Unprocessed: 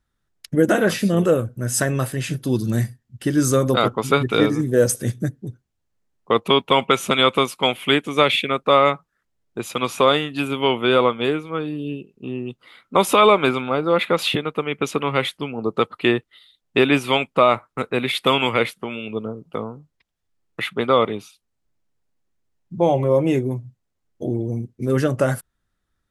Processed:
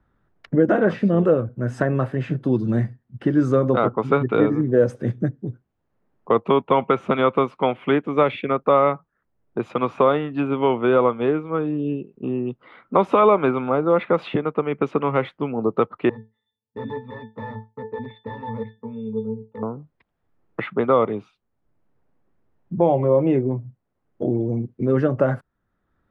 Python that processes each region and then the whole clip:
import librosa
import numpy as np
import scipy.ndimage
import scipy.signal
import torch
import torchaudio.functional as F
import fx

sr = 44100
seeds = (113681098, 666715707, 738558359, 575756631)

y = fx.chain(x, sr, fx.overflow_wrap(gain_db=13.0),
    fx.octave_resonator(note='A', decay_s=0.21), at=(16.09, 19.63))
y = scipy.signal.sosfilt(scipy.signal.butter(2, 1300.0, 'lowpass', fs=sr, output='sos'), y)
y = fx.low_shelf(y, sr, hz=74.0, db=-7.5)
y = fx.band_squash(y, sr, depth_pct=40)
y = F.gain(torch.from_numpy(y), 1.0).numpy()